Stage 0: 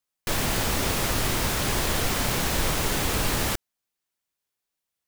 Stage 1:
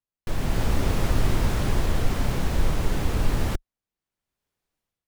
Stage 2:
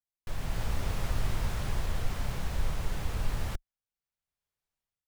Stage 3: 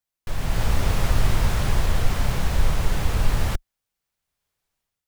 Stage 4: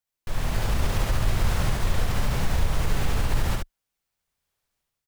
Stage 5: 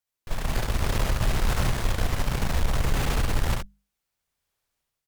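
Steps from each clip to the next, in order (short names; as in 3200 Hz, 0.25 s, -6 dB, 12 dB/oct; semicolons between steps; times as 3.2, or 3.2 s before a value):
tilt -2.5 dB/oct; AGC gain up to 14 dB; gain -8.5 dB
bell 300 Hz -8.5 dB 1.3 oct; gain -7.5 dB
AGC gain up to 3 dB; gain +7.5 dB
limiter -14 dBFS, peak gain reduction 7 dB; on a send: echo 70 ms -3 dB; on the sum: gain -1.5 dB
notches 50/100/150/200 Hz; added harmonics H 6 -20 dB, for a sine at -11 dBFS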